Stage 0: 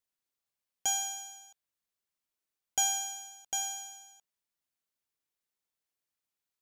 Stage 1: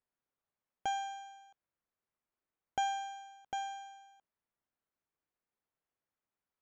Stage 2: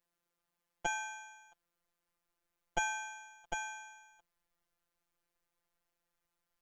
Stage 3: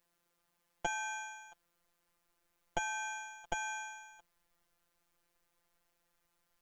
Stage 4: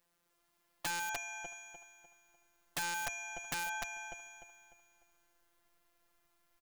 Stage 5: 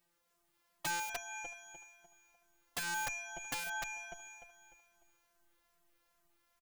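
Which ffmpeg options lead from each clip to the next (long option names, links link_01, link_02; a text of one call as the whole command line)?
ffmpeg -i in.wav -af "lowpass=1600,volume=3.5dB" out.wav
ffmpeg -i in.wav -af "asubboost=boost=6.5:cutoff=70,afftfilt=real='hypot(re,im)*cos(PI*b)':imag='0':win_size=1024:overlap=0.75,volume=10dB" out.wav
ffmpeg -i in.wav -af "acompressor=threshold=-40dB:ratio=5,volume=7dB" out.wav
ffmpeg -i in.wav -filter_complex "[0:a]asplit=2[link_01][link_02];[link_02]aecho=0:1:299|598|897|1196|1495:0.631|0.227|0.0818|0.0294|0.0106[link_03];[link_01][link_03]amix=inputs=2:normalize=0,aeval=exprs='(mod(28.2*val(0)+1,2)-1)/28.2':channel_layout=same,volume=1dB" out.wav
ffmpeg -i in.wav -filter_complex "[0:a]asplit=2[link_01][link_02];[link_02]adelay=2.7,afreqshift=-2.4[link_03];[link_01][link_03]amix=inputs=2:normalize=1,volume=2.5dB" out.wav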